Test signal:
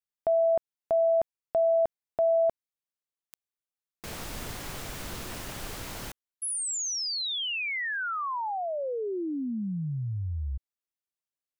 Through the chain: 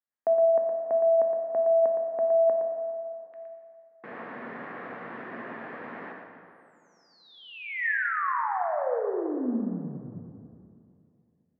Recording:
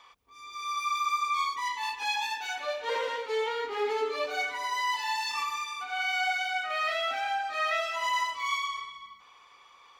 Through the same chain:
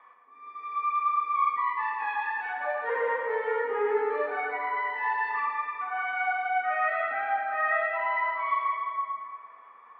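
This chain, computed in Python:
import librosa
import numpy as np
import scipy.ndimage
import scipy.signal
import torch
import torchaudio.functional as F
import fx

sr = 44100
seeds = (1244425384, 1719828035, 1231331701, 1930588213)

y = fx.cabinet(x, sr, low_hz=180.0, low_slope=24, high_hz=2000.0, hz=(240.0, 480.0, 710.0, 1100.0, 1800.0), db=(5, 5, 4, 5, 9))
y = y + 10.0 ** (-7.0 / 20.0) * np.pad(y, (int(115 * sr / 1000.0), 0))[:len(y)]
y = fx.rev_plate(y, sr, seeds[0], rt60_s=2.6, hf_ratio=0.65, predelay_ms=0, drr_db=2.5)
y = F.gain(torch.from_numpy(y), -3.5).numpy()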